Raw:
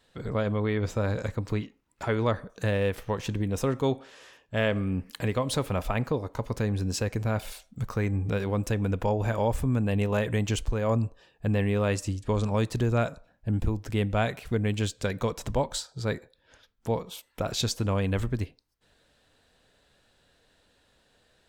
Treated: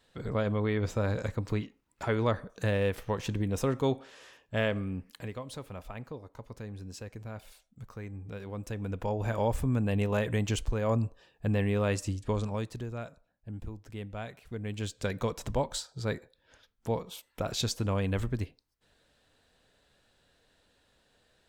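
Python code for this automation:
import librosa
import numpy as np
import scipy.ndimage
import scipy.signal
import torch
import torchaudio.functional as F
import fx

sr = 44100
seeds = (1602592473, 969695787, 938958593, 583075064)

y = fx.gain(x, sr, db=fx.line((4.55, -2.0), (5.51, -14.0), (8.26, -14.0), (9.42, -2.5), (12.26, -2.5), (12.92, -13.5), (14.43, -13.5), (15.07, -3.0)))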